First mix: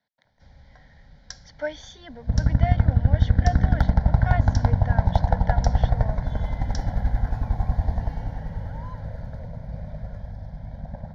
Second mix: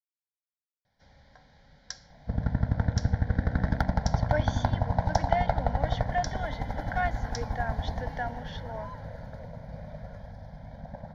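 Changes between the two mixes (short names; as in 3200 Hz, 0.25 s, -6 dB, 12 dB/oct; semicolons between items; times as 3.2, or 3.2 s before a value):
speech: entry +2.70 s; first sound: entry +0.60 s; master: add low shelf 160 Hz -11 dB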